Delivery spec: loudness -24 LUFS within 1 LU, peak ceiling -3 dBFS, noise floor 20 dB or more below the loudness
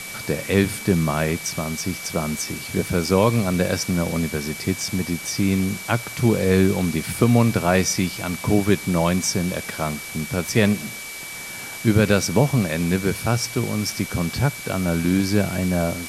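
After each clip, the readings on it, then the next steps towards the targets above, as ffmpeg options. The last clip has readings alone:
steady tone 2300 Hz; tone level -35 dBFS; noise floor -34 dBFS; noise floor target -42 dBFS; loudness -22.0 LUFS; peak -3.0 dBFS; loudness target -24.0 LUFS
-> -af "bandreject=f=2.3k:w=30"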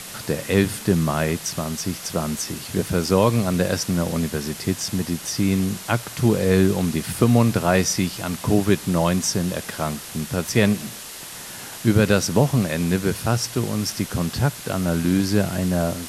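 steady tone none; noise floor -37 dBFS; noise floor target -42 dBFS
-> -af "afftdn=nr=6:nf=-37"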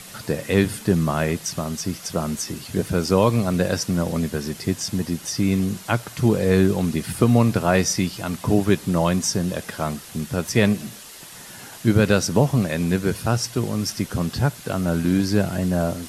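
noise floor -41 dBFS; noise floor target -42 dBFS
-> -af "afftdn=nr=6:nf=-41"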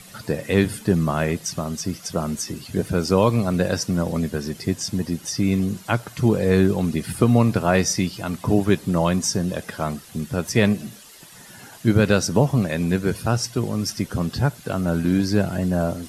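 noise floor -45 dBFS; loudness -22.0 LUFS; peak -3.5 dBFS; loudness target -24.0 LUFS
-> -af "volume=-2dB"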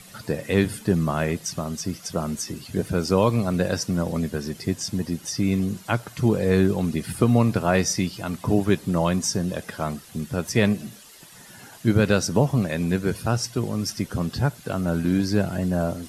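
loudness -24.0 LUFS; peak -5.5 dBFS; noise floor -47 dBFS

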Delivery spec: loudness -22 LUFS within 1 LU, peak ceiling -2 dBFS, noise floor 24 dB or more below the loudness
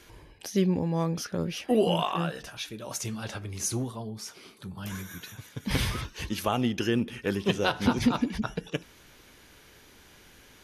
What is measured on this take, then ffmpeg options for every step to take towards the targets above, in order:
loudness -29.5 LUFS; peak -12.5 dBFS; loudness target -22.0 LUFS
-> -af "volume=7.5dB"

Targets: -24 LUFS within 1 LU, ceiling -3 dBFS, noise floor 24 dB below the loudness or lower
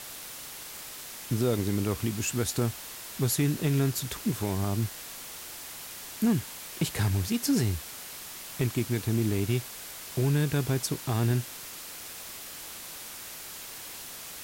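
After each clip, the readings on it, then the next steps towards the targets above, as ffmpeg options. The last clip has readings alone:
noise floor -42 dBFS; noise floor target -55 dBFS; loudness -31.0 LUFS; peak -15.5 dBFS; loudness target -24.0 LUFS
-> -af "afftdn=nr=13:nf=-42"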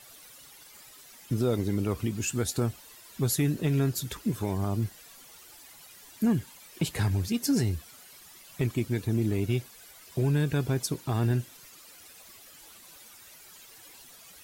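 noise floor -52 dBFS; noise floor target -53 dBFS
-> -af "afftdn=nr=6:nf=-52"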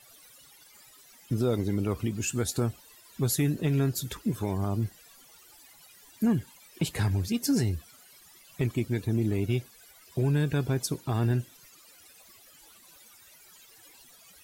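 noise floor -56 dBFS; loudness -29.0 LUFS; peak -15.5 dBFS; loudness target -24.0 LUFS
-> -af "volume=5dB"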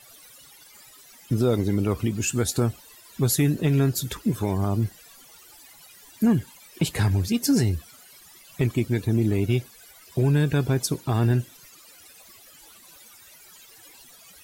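loudness -24.0 LUFS; peak -10.5 dBFS; noise floor -51 dBFS

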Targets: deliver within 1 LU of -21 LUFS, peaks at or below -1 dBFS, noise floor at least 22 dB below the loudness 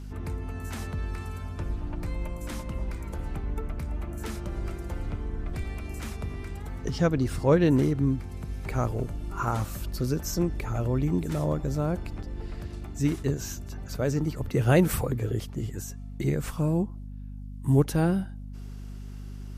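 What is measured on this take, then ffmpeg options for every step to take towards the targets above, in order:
hum 50 Hz; harmonics up to 250 Hz; hum level -36 dBFS; loudness -29.5 LUFS; peak -8.5 dBFS; loudness target -21.0 LUFS
-> -af "bandreject=f=50:t=h:w=6,bandreject=f=100:t=h:w=6,bandreject=f=150:t=h:w=6,bandreject=f=200:t=h:w=6,bandreject=f=250:t=h:w=6"
-af "volume=8.5dB,alimiter=limit=-1dB:level=0:latency=1"

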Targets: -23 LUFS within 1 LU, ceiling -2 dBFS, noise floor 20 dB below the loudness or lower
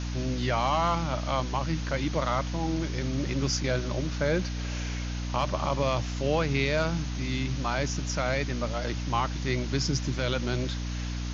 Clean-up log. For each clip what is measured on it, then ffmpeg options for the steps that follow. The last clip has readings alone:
hum 60 Hz; harmonics up to 300 Hz; hum level -30 dBFS; noise floor -33 dBFS; noise floor target -49 dBFS; loudness -29.0 LUFS; peak -13.5 dBFS; loudness target -23.0 LUFS
-> -af "bandreject=f=60:t=h:w=6,bandreject=f=120:t=h:w=6,bandreject=f=180:t=h:w=6,bandreject=f=240:t=h:w=6,bandreject=f=300:t=h:w=6"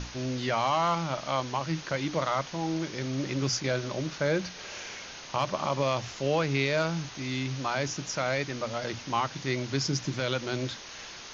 hum none; noise floor -44 dBFS; noise floor target -51 dBFS
-> -af "afftdn=nr=7:nf=-44"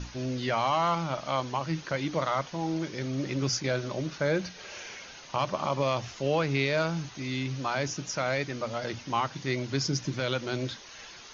noise floor -47 dBFS; noise floor target -51 dBFS
-> -af "afftdn=nr=6:nf=-47"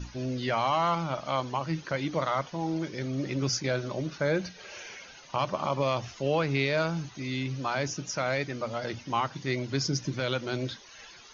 noise floor -50 dBFS; noise floor target -51 dBFS
-> -af "afftdn=nr=6:nf=-50"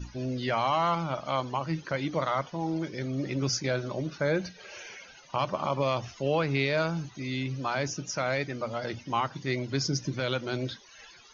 noise floor -53 dBFS; loudness -30.5 LUFS; peak -15.5 dBFS; loudness target -23.0 LUFS
-> -af "volume=7.5dB"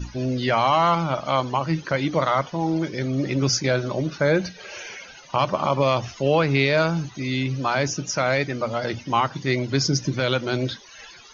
loudness -23.0 LUFS; peak -8.0 dBFS; noise floor -45 dBFS

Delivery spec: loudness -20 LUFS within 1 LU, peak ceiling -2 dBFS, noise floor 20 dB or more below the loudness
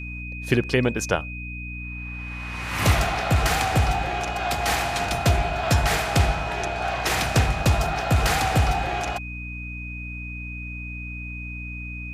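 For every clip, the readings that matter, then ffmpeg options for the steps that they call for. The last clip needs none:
hum 60 Hz; harmonics up to 300 Hz; hum level -30 dBFS; steady tone 2500 Hz; tone level -35 dBFS; loudness -24.5 LUFS; peak -6.0 dBFS; loudness target -20.0 LUFS
-> -af "bandreject=f=60:t=h:w=4,bandreject=f=120:t=h:w=4,bandreject=f=180:t=h:w=4,bandreject=f=240:t=h:w=4,bandreject=f=300:t=h:w=4"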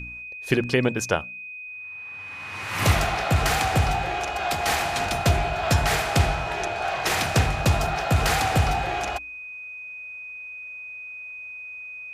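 hum none; steady tone 2500 Hz; tone level -35 dBFS
-> -af "bandreject=f=2.5k:w=30"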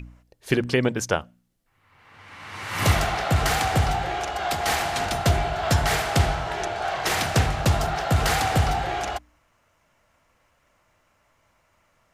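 steady tone none; loudness -23.5 LUFS; peak -7.0 dBFS; loudness target -20.0 LUFS
-> -af "volume=3.5dB"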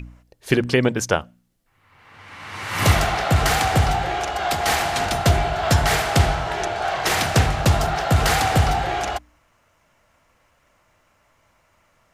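loudness -20.0 LUFS; peak -3.5 dBFS; noise floor -63 dBFS

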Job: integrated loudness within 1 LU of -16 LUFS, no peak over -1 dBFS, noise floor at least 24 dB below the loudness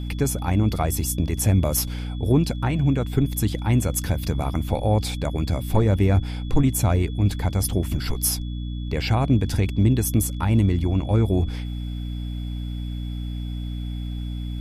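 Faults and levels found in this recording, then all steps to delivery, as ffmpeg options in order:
hum 60 Hz; harmonics up to 300 Hz; hum level -27 dBFS; steady tone 3400 Hz; tone level -46 dBFS; loudness -23.5 LUFS; peak -6.0 dBFS; loudness target -16.0 LUFS
-> -af "bandreject=f=60:t=h:w=4,bandreject=f=120:t=h:w=4,bandreject=f=180:t=h:w=4,bandreject=f=240:t=h:w=4,bandreject=f=300:t=h:w=4"
-af "bandreject=f=3.4k:w=30"
-af "volume=7.5dB,alimiter=limit=-1dB:level=0:latency=1"

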